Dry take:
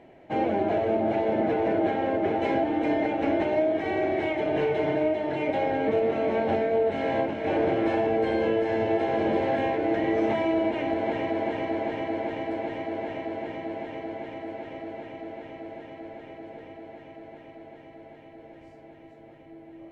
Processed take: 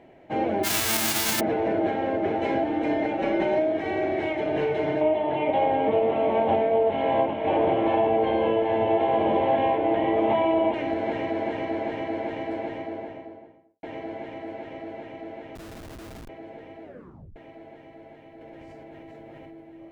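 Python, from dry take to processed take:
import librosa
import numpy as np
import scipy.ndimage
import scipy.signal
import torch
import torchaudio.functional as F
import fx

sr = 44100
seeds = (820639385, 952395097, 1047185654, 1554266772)

y = fx.envelope_flatten(x, sr, power=0.1, at=(0.63, 1.39), fade=0.02)
y = fx.comb(y, sr, ms=5.3, depth=0.75, at=(3.18, 3.58))
y = fx.curve_eq(y, sr, hz=(400.0, 1000.0, 1500.0, 3300.0, 4700.0), db=(0, 8, -5, 4, -16), at=(5.01, 10.74))
y = fx.studio_fade_out(y, sr, start_s=12.54, length_s=1.29)
y = fx.schmitt(y, sr, flips_db=-39.5, at=(15.55, 16.29))
y = fx.env_flatten(y, sr, amount_pct=100, at=(18.41, 19.61))
y = fx.edit(y, sr, fx.tape_stop(start_s=16.83, length_s=0.53), tone=tone)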